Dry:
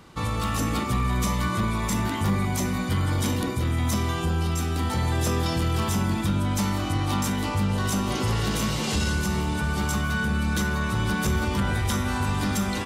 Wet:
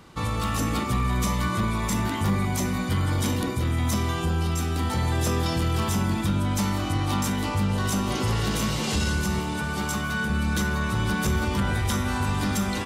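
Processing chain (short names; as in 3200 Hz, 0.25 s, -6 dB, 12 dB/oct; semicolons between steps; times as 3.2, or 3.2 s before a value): 9.39–10.3 HPF 140 Hz 6 dB/oct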